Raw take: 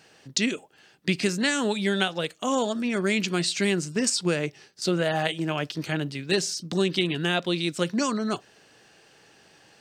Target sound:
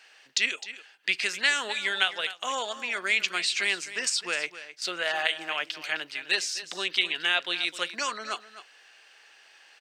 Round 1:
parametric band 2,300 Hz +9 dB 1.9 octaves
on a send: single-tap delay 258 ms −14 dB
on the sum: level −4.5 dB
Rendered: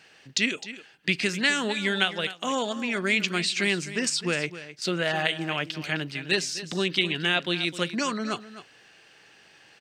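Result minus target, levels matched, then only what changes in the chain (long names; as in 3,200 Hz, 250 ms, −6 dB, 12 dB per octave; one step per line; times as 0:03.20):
500 Hz band +6.0 dB
add first: high-pass filter 690 Hz 12 dB per octave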